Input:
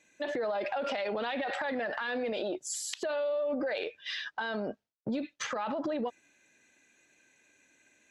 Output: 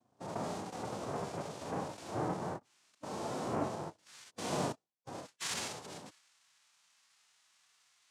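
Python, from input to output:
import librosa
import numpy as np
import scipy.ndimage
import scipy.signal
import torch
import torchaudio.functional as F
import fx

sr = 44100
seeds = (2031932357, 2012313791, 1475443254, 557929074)

y = fx.filter_sweep_bandpass(x, sr, from_hz=220.0, to_hz=4400.0, start_s=3.7, end_s=6.38, q=2.2)
y = fx.noise_vocoder(y, sr, seeds[0], bands=2)
y = fx.hpss(y, sr, part='percussive', gain_db=-16)
y = F.gain(torch.from_numpy(y), 10.0).numpy()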